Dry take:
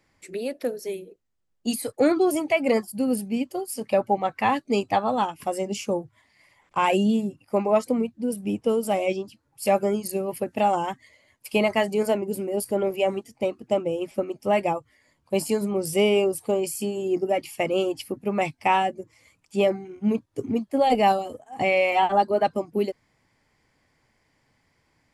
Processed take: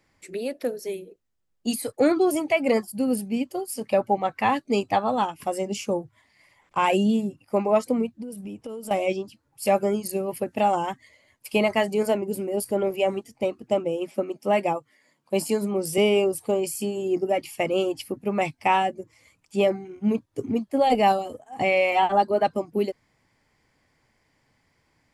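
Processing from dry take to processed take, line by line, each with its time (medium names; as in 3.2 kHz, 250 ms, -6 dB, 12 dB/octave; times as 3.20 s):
8.22–8.91 s: compression 12:1, threshold -32 dBFS
13.84–15.98 s: high-pass 150 Hz 24 dB/octave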